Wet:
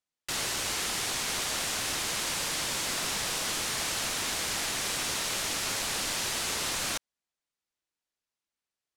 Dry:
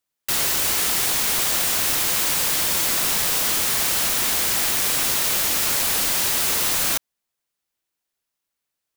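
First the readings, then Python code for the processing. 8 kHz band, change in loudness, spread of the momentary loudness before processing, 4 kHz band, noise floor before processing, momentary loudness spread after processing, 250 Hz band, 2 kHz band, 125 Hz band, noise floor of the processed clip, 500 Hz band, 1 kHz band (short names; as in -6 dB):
-9.5 dB, -11.0 dB, 0 LU, -6.5 dB, -82 dBFS, 0 LU, -6.5 dB, -6.5 dB, -6.5 dB, under -85 dBFS, -6.5 dB, -6.5 dB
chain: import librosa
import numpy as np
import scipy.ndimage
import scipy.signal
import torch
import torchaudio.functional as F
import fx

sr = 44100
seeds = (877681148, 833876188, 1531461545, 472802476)

y = scipy.signal.sosfilt(scipy.signal.butter(2, 8300.0, 'lowpass', fs=sr, output='sos'), x)
y = y * librosa.db_to_amplitude(-6.5)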